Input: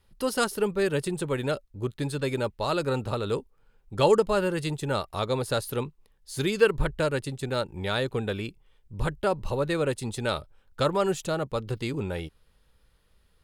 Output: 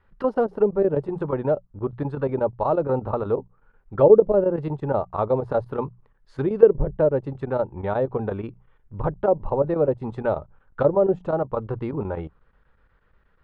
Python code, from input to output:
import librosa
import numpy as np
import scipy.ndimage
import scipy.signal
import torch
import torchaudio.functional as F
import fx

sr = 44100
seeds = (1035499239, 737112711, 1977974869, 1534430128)

y = fx.hum_notches(x, sr, base_hz=60, count=3)
y = fx.chopper(y, sr, hz=8.3, depth_pct=65, duty_pct=85)
y = fx.envelope_lowpass(y, sr, base_hz=540.0, top_hz=1600.0, q=2.0, full_db=-20.0, direction='down')
y = F.gain(torch.from_numpy(y), 3.0).numpy()